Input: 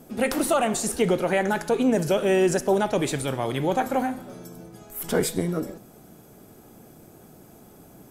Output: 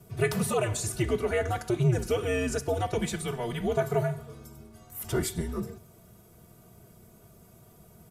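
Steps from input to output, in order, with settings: comb 3.8 ms, depth 94%; frequency shift -110 Hz; gain -7.5 dB

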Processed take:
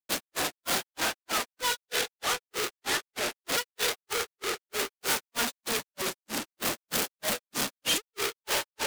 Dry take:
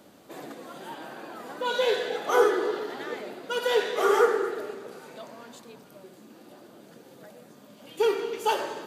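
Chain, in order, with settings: infinite clipping; grains 0.211 s, grains 3.2/s, pitch spread up and down by 0 st; soft clip -33.5 dBFS, distortion -16 dB; tilt shelf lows -6 dB, about 1100 Hz; expander -33 dBFS; gain +7.5 dB

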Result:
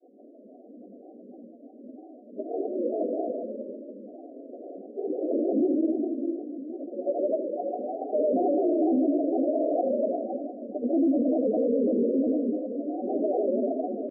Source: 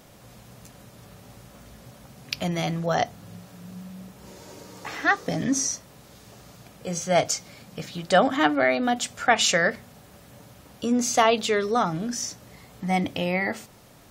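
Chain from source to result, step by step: delay-line pitch shifter +2.5 st; shoebox room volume 130 m³, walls hard, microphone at 1 m; FFT band-pass 230–670 Hz; grains, pitch spread up and down by 3 st; on a send: echo 77 ms -13.5 dB; on the sum: short-mantissa float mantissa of 8-bit; air absorption 450 m; limiter -17 dBFS, peak gain reduction 9.5 dB

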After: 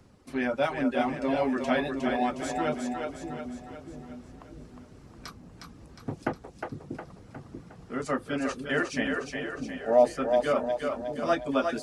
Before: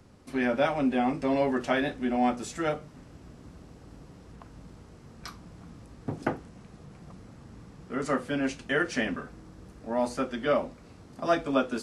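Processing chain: reverb removal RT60 0.71 s; spectral gain 9.18–10.18, 370–810 Hz +11 dB; split-band echo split 380 Hz, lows 0.638 s, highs 0.36 s, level -4.5 dB; gain -1 dB

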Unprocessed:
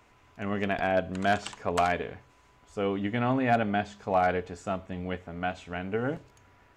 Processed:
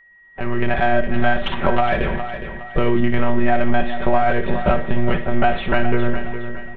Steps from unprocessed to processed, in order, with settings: monotone LPC vocoder at 8 kHz 120 Hz; low shelf 150 Hz +4.5 dB; comb 5.2 ms, depth 67%; in parallel at -5 dB: soft clip -27.5 dBFS, distortion -6 dB; on the sum: gate -45 dBFS, range -19 dB; compressor 12:1, threshold -27 dBFS, peak gain reduction 13 dB; flutter echo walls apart 10.1 m, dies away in 0.27 s; treble ducked by the level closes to 340 Hz, closed at -17.5 dBFS; whine 1900 Hz -50 dBFS; AGC gain up to 14 dB; feedback echo 0.413 s, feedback 36%, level -10 dB; gain +1.5 dB

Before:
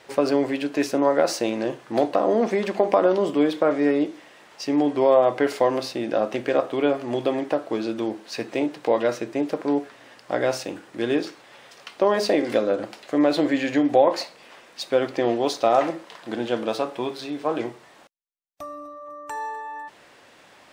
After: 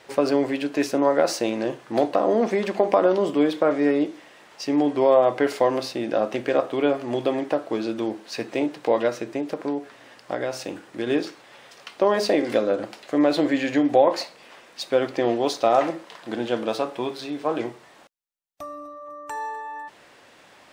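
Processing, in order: 9.08–11.07 compressor, threshold -23 dBFS, peak gain reduction 6.5 dB

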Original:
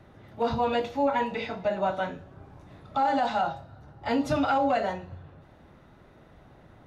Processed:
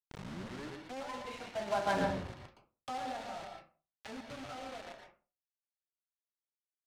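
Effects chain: tape start at the beginning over 1.16 s; Doppler pass-by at 2.05, 20 m/s, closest 1.2 m; notches 50/100/150/200 Hz; companded quantiser 4-bit; air absorption 68 m; on a send at -4.5 dB: reverb RT60 0.35 s, pre-delay 0.112 s; on the sum: mismatched tape noise reduction encoder only; gain +7 dB

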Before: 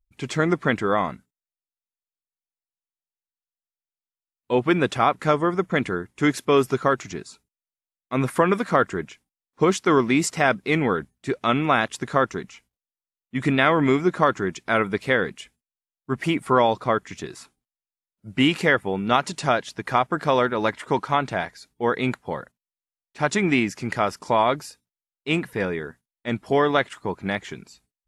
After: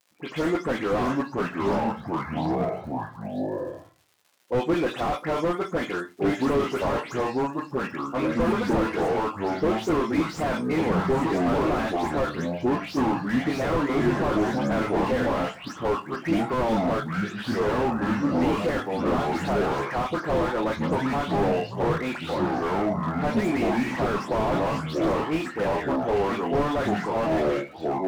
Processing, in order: spectral delay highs late, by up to 0.132 s; low-pass opened by the level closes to 2500 Hz, open at -18 dBFS; crackle 100/s -46 dBFS; HPF 300 Hz 12 dB/oct; notch 390 Hz, Q 12; reverb RT60 0.20 s, pre-delay 6 ms, DRR 5.5 dB; echoes that change speed 0.51 s, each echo -4 st, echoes 3; slew limiter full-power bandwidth 50 Hz

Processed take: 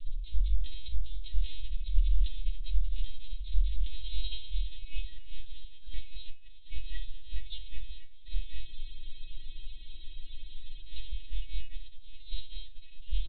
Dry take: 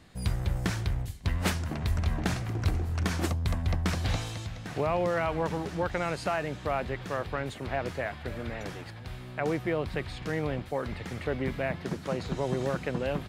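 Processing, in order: inverse Chebyshev band-stop 150–1300 Hz, stop band 70 dB; low shelf 120 Hz +11.5 dB; comb 6.8 ms, depth 88%; reverse; compressor 5:1, threshold -36 dBFS, peak gain reduction 14.5 dB; reverse; outdoor echo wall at 99 m, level -20 dB; wow and flutter 22 cents; on a send at -5 dB: reverb RT60 0.55 s, pre-delay 5 ms; on the sum: LPC vocoder at 8 kHz pitch kept; spectral freeze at 8.68, 2.13 s; gain +16.5 dB

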